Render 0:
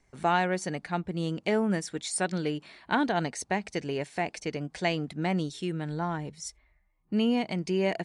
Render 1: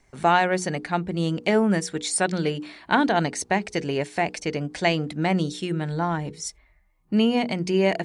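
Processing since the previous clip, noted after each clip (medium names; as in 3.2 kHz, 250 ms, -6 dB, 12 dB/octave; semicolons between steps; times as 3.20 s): hum notches 60/120/180/240/300/360/420/480 Hz; trim +6.5 dB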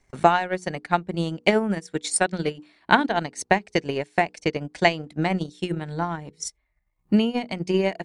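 transient shaper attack +10 dB, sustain -11 dB; trim -4 dB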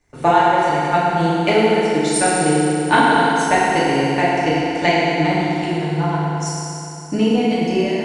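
FDN reverb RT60 3.2 s, high-frequency decay 0.85×, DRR -9.5 dB; trim -3 dB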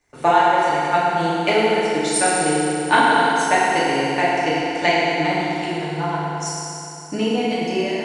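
bass shelf 270 Hz -10 dB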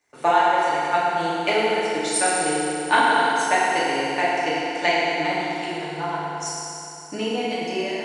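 high-pass 340 Hz 6 dB/octave; trim -2 dB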